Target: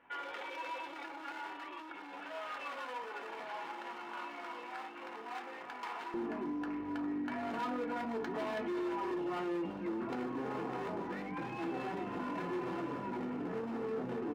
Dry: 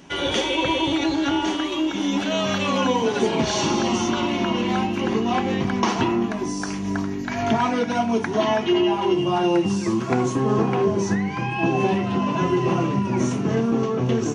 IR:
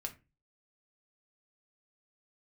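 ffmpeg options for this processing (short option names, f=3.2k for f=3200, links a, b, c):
-filter_complex "[0:a]lowpass=f=2.1k:w=0.5412,lowpass=f=2.1k:w=1.3066,asoftclip=type=hard:threshold=-22.5dB,aeval=exprs='val(0)+0.0158*(sin(2*PI*50*n/s)+sin(2*PI*2*50*n/s)/2+sin(2*PI*3*50*n/s)/3+sin(2*PI*4*50*n/s)/4+sin(2*PI*5*50*n/s)/5)':c=same[a];[1:a]atrim=start_sample=2205,asetrate=83790,aresample=44100[b];[a][b]afir=irnorm=-1:irlink=0,alimiter=level_in=4dB:limit=-24dB:level=0:latency=1:release=11,volume=-4dB,asetnsamples=n=441:p=0,asendcmd='6.14 highpass f 230',highpass=810,aecho=1:1:625|1250|1875|2500:0.1|0.055|0.0303|0.0166,volume=-1.5dB"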